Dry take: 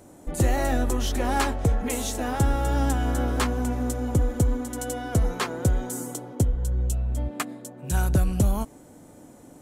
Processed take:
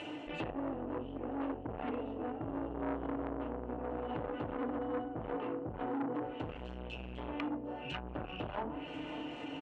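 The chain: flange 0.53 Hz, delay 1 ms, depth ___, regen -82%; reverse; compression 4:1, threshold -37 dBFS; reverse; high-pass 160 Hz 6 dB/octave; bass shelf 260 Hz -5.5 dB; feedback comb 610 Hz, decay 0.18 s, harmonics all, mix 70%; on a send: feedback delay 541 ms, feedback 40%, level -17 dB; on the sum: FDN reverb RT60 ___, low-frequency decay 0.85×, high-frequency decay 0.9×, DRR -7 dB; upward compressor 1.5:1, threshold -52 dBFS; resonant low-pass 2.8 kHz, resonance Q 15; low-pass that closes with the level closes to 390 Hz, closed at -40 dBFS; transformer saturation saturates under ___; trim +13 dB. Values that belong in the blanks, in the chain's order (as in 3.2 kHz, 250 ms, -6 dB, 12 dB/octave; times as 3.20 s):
9.7 ms, 0.34 s, 880 Hz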